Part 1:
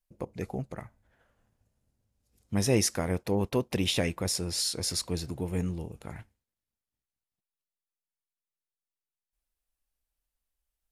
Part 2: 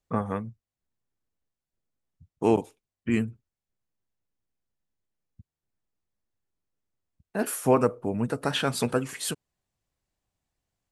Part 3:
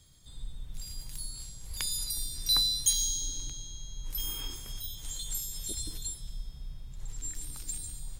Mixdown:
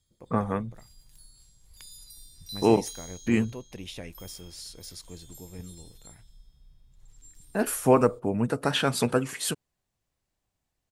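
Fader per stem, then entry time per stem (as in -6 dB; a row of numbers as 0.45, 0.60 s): -12.5, +1.5, -14.5 dB; 0.00, 0.20, 0.00 s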